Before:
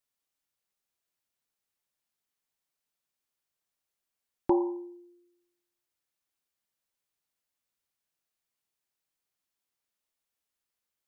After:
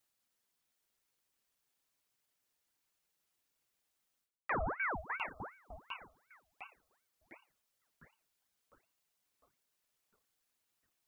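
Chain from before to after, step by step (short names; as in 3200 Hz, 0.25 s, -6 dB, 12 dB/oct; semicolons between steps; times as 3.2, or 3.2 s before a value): split-band echo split 600 Hz, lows 0.302 s, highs 0.704 s, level -12.5 dB; reverse; compressor 16:1, threshold -38 dBFS, peak gain reduction 19 dB; reverse; reverb removal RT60 0.62 s; ring modulator with a swept carrier 1100 Hz, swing 75%, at 2.7 Hz; gain +8.5 dB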